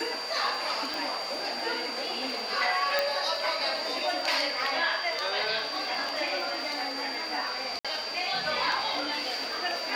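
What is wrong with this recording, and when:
crackle 83/s -38 dBFS
tone 4700 Hz -35 dBFS
0.94 pop
2.99 pop -11 dBFS
7.79–7.85 gap 56 ms

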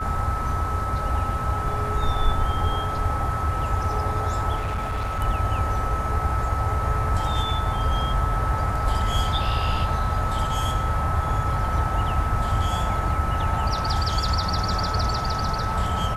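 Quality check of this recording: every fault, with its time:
tone 1300 Hz -28 dBFS
4.56–5.21 clipped -23 dBFS

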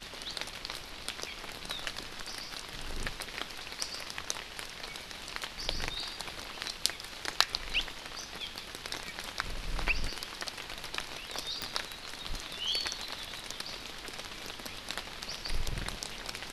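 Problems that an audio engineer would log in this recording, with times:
11.62 pop -17 dBFS

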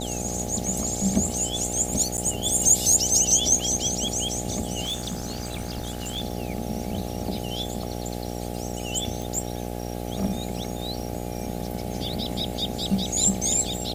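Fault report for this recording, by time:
buzz 60 Hz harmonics 14 -32 dBFS
crackle 13/s -33 dBFS
2.17–2.18 gap 9.6 ms
4.83–6.22 clipped -25 dBFS
9.22 pop

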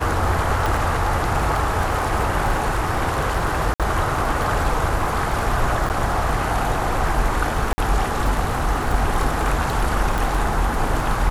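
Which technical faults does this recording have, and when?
crackle 20/s -23 dBFS
0.66 pop
3.74–3.8 gap 57 ms
5.89–5.9 gap 9.5 ms
7.73–7.78 gap 50 ms
10.18 pop

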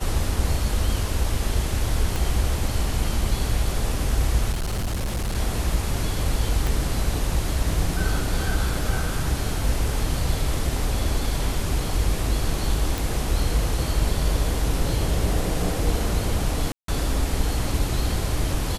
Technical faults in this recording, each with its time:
2.16 pop
4.51–5.35 clipped -22 dBFS
6.67 pop
12.98 pop
16.72–16.88 gap 0.163 s

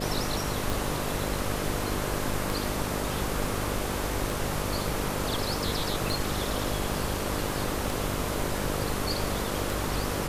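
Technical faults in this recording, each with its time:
buzz 50 Hz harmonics 12 -34 dBFS
tick 33 1/3 rpm

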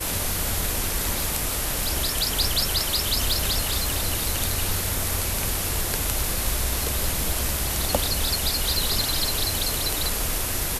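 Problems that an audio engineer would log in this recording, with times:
3.31 pop

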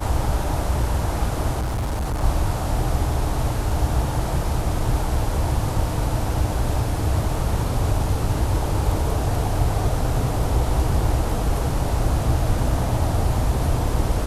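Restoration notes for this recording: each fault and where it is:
1.59–2.24 clipped -21 dBFS

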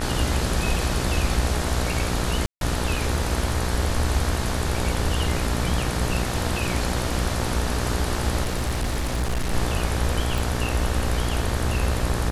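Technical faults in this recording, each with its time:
buzz 60 Hz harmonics 31 -28 dBFS
2.46–2.61 gap 0.152 s
8.43–9.54 clipped -20.5 dBFS
10.38 pop

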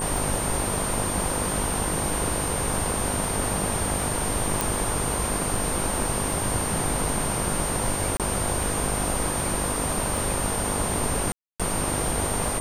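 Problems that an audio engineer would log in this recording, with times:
buzz 50 Hz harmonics 21 -32 dBFS
tick 78 rpm
tone 8800 Hz -29 dBFS
4.61 pop
8.17–8.2 gap 27 ms
11.32–11.6 gap 0.276 s

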